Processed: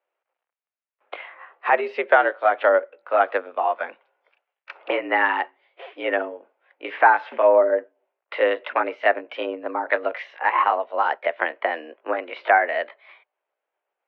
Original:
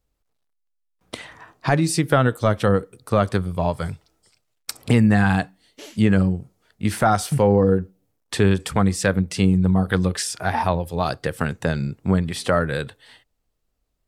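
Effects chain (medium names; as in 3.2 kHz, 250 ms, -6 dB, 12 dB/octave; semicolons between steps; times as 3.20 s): pitch bend over the whole clip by +2.5 st starting unshifted; mistuned SSB +74 Hz 400–2700 Hz; trim +4.5 dB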